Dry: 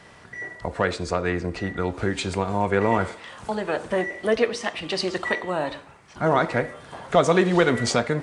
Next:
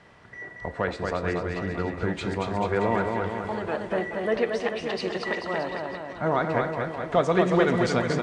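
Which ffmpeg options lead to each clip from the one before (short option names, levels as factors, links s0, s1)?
-filter_complex "[0:a]aemphasis=mode=reproduction:type=50fm,asplit=2[s0][s1];[s1]aecho=0:1:230|437|623.3|791|941.9:0.631|0.398|0.251|0.158|0.1[s2];[s0][s2]amix=inputs=2:normalize=0,volume=0.596"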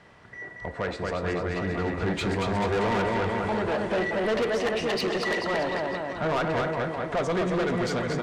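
-af "dynaudnorm=f=340:g=11:m=2.51,asoftclip=type=tanh:threshold=0.0794"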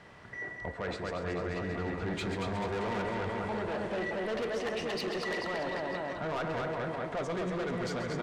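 -af "areverse,acompressor=threshold=0.0224:ratio=6,areverse,aecho=1:1:135:0.282"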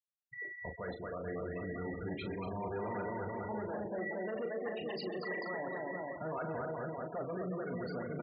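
-filter_complex "[0:a]highpass=f=49:p=1,afftfilt=real='re*gte(hypot(re,im),0.0282)':imag='im*gte(hypot(re,im),0.0282)':win_size=1024:overlap=0.75,asplit=2[s0][s1];[s1]adelay=38,volume=0.398[s2];[s0][s2]amix=inputs=2:normalize=0,volume=0.562"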